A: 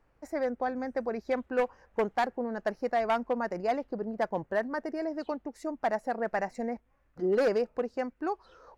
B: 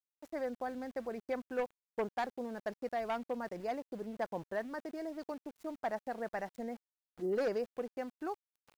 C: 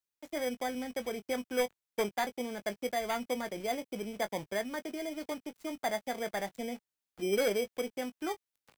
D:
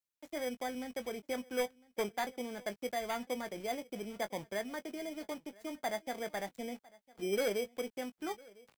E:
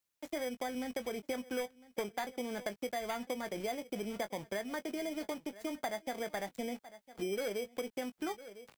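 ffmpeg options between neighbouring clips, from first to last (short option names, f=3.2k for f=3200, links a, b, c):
-af "adynamicequalizer=threshold=0.00794:dfrequency=1100:dqfactor=0.77:tfrequency=1100:tqfactor=0.77:attack=5:release=100:ratio=0.375:range=1.5:mode=cutabove:tftype=bell,aeval=exprs='val(0)*gte(abs(val(0)),0.00501)':c=same,volume=-7dB"
-filter_complex "[0:a]asplit=2[a][b];[b]adelay=20,volume=-11dB[c];[a][c]amix=inputs=2:normalize=0,acrossover=split=130|880|3900[d][e][f][g];[e]acrusher=samples=16:mix=1:aa=0.000001[h];[d][h][f][g]amix=inputs=4:normalize=0,volume=3.5dB"
-af "aecho=1:1:1004:0.0668,volume=-3.5dB"
-af "acompressor=threshold=-41dB:ratio=6,volume=6.5dB"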